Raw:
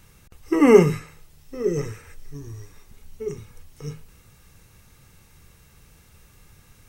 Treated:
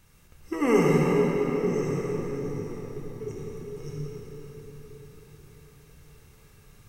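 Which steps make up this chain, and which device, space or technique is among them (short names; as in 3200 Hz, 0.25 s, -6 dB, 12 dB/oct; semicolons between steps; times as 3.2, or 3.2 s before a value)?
dynamic EQ 330 Hz, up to -5 dB, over -24 dBFS, Q 1.1; cathedral (reverb RT60 5.6 s, pre-delay 55 ms, DRR -4 dB); gain -7 dB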